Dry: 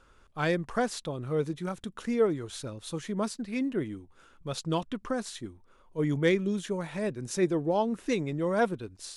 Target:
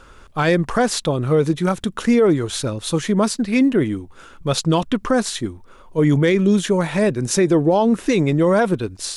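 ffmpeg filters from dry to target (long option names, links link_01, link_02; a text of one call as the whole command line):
ffmpeg -i in.wav -af "alimiter=level_in=22dB:limit=-1dB:release=50:level=0:latency=1,volume=-7dB" out.wav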